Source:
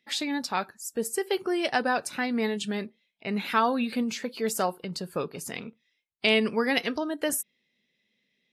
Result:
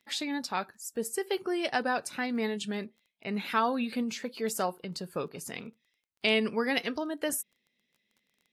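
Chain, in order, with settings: crackle 19/s -46 dBFS; gain -3.5 dB

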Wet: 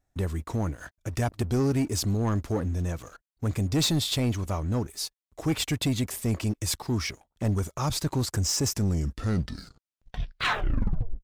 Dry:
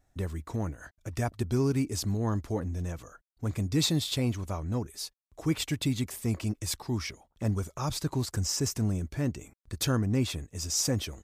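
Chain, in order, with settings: tape stop at the end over 2.58 s; sample leveller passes 2; gain -2.5 dB

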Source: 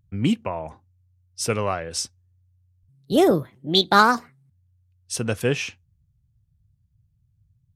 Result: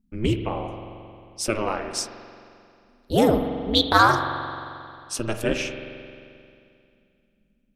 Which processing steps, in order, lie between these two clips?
low shelf 62 Hz -9.5 dB; ring modulator 110 Hz; reverb RT60 2.5 s, pre-delay 44 ms, DRR 6.5 dB; gain +1.5 dB

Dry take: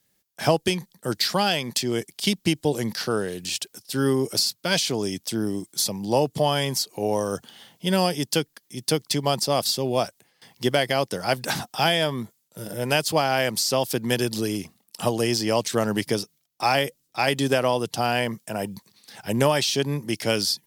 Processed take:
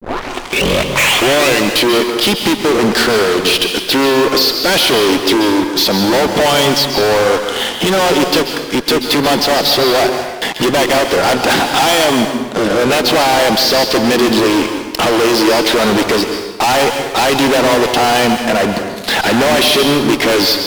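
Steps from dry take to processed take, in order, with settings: tape start at the beginning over 1.91 s; LPF 3900 Hz 24 dB/oct; resonant low shelf 200 Hz -12.5 dB, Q 1.5; upward compressor, threshold -26 dBFS; fuzz box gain 39 dB, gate -46 dBFS; plate-style reverb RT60 1.1 s, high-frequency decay 0.9×, pre-delay 0.12 s, DRR 5.5 dB; gain +2.5 dB

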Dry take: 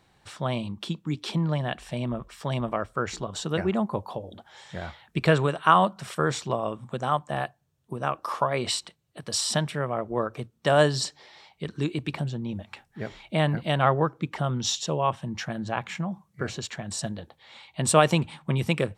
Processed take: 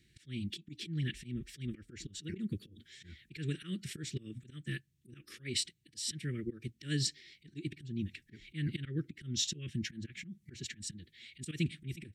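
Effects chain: auto swell 0.323 s; elliptic band-stop 350–1900 Hz, stop band 60 dB; time stretch by phase-locked vocoder 0.64×; gain -1.5 dB

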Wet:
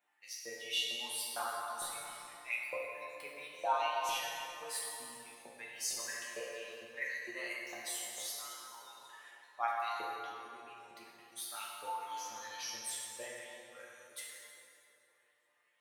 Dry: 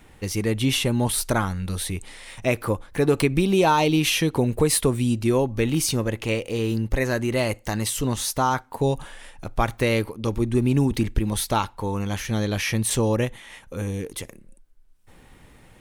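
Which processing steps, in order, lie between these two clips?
per-bin expansion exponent 1.5; reverse; compressor 6:1, threshold -34 dBFS, peak gain reduction 18 dB; reverse; LFO high-pass saw up 2.2 Hz 560–7500 Hz; resonator bank A#2 major, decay 0.25 s; plate-style reverb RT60 3.3 s, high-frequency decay 0.55×, DRR -4 dB; gain +7.5 dB

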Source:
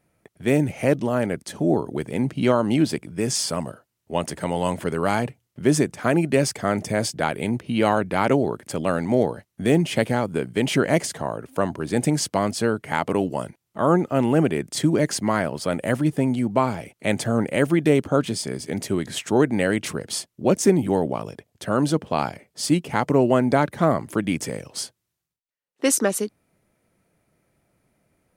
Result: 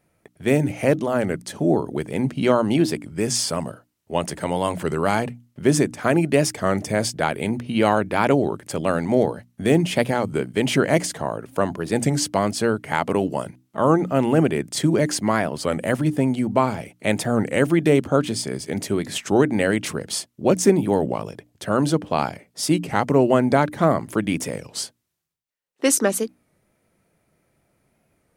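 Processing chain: notches 60/120/180/240/300 Hz; record warp 33 1/3 rpm, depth 100 cents; gain +1.5 dB

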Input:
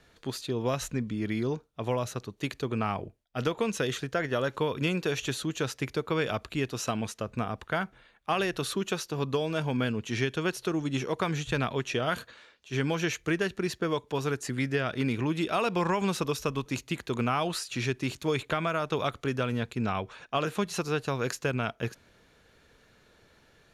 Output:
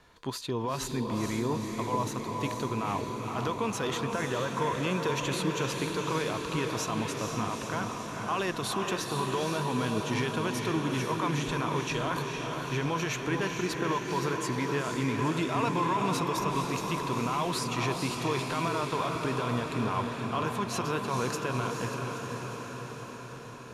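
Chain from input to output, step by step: bell 1000 Hz +14 dB 0.27 oct; limiter -22 dBFS, peak gain reduction 12.5 dB; diffused feedback echo 0.475 s, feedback 69%, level -4 dB

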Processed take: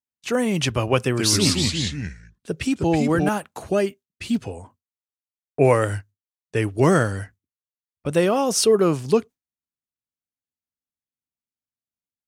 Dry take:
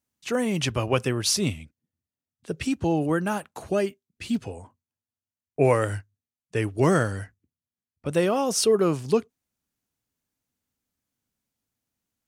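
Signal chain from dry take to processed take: gate with hold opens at -42 dBFS; 1.01–3.29 echoes that change speed 0.129 s, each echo -2 st, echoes 3; gain +3.5 dB

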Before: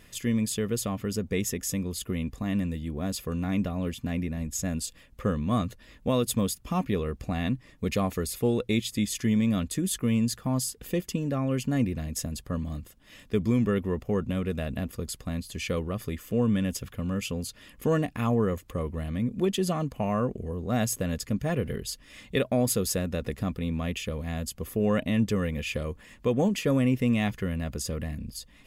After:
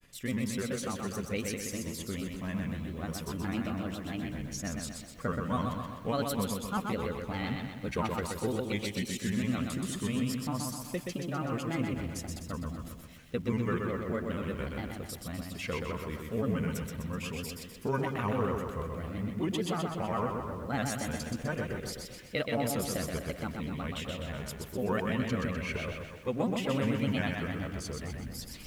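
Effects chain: dynamic EQ 1400 Hz, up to +8 dB, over -47 dBFS, Q 0.84; reverse; upward compressor, threshold -29 dBFS; reverse; delay with a stepping band-pass 0.131 s, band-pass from 2900 Hz, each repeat -1.4 oct, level -9 dB; grains 0.1 s, spray 11 ms, pitch spread up and down by 3 st; lo-fi delay 0.126 s, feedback 55%, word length 9-bit, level -4 dB; gain -7 dB

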